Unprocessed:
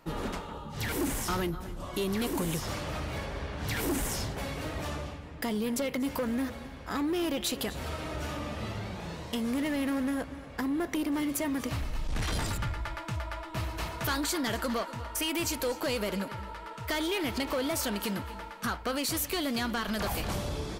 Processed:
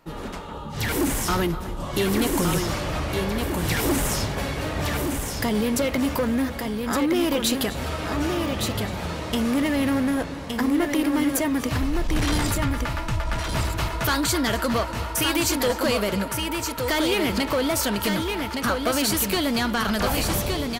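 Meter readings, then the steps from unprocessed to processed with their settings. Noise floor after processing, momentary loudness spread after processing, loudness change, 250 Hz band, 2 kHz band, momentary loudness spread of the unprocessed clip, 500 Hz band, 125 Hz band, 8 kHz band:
-33 dBFS, 6 LU, +8.5 dB, +8.5 dB, +8.5 dB, 7 LU, +8.5 dB, +8.5 dB, +8.5 dB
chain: level rider gain up to 7.5 dB; on a send: delay 1166 ms -5 dB

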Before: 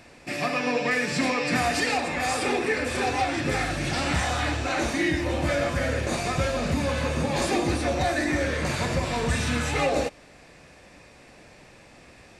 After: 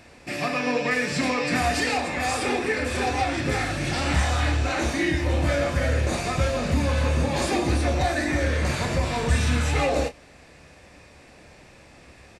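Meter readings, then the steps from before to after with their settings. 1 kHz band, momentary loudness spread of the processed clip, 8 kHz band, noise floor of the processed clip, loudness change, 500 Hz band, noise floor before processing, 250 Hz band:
+0.5 dB, 3 LU, +0.5 dB, -50 dBFS, +1.5 dB, +0.5 dB, -51 dBFS, +0.5 dB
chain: peaking EQ 72 Hz +6.5 dB 0.63 oct; doubling 28 ms -10.5 dB

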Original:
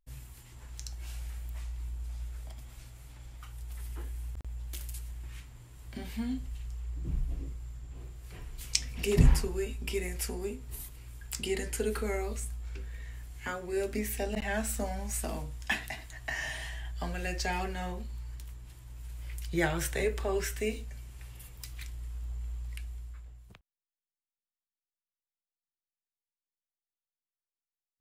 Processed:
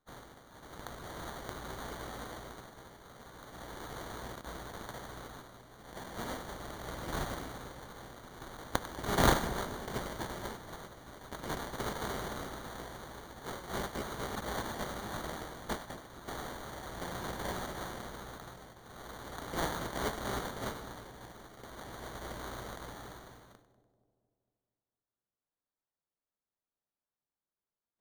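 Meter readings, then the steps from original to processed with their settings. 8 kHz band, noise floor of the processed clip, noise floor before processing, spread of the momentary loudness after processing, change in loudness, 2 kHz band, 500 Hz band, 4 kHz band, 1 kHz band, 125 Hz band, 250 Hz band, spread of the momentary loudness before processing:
-5.5 dB, under -85 dBFS, under -85 dBFS, 14 LU, -4.0 dB, -3.0 dB, -4.5 dB, -1.5 dB, +4.5 dB, -7.5 dB, -3.5 dB, 17 LU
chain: spectral contrast reduction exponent 0.31; sample-and-hold 17×; two-band feedback delay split 690 Hz, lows 233 ms, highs 97 ms, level -13.5 dB; trim -5.5 dB

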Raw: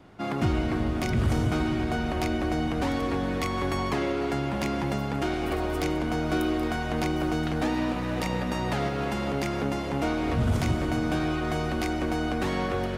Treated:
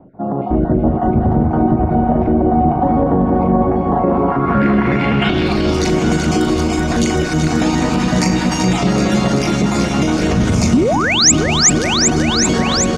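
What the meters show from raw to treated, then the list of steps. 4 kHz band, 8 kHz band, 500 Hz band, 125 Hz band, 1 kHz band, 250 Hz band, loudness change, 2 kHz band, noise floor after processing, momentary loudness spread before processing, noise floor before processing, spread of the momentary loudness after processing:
+17.5 dB, +26.5 dB, +12.0 dB, +12.0 dB, +12.5 dB, +13.5 dB, +13.5 dB, +11.0 dB, -19 dBFS, 3 LU, -30 dBFS, 5 LU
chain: random holes in the spectrogram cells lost 36%; level rider gain up to 8 dB; doubling 38 ms -8 dB; painted sound rise, 10.73–11.32 s, 210–8000 Hz -12 dBFS; on a send: echo whose repeats swap between lows and highs 191 ms, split 1.9 kHz, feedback 87%, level -6 dB; on the sum: peak limiter -13 dBFS, peak gain reduction 12.5 dB; peaking EQ 190 Hz +8 dB 0.99 oct; low-pass sweep 730 Hz -> 6.7 kHz, 4.00–5.95 s; treble shelf 9 kHz +12 dB; trim +3.5 dB

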